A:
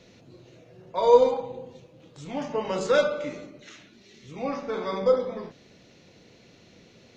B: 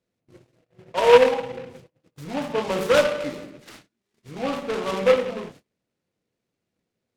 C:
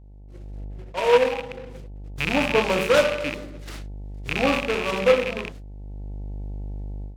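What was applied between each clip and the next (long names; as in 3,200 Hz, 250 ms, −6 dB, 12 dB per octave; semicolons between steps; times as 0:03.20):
noise gate −48 dBFS, range −30 dB; high-frequency loss of the air 51 metres; short delay modulated by noise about 1,700 Hz, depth 0.069 ms; level +3.5 dB
loose part that buzzes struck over −38 dBFS, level −17 dBFS; hum with harmonics 50 Hz, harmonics 18, −41 dBFS −9 dB per octave; automatic gain control gain up to 15 dB; level −5.5 dB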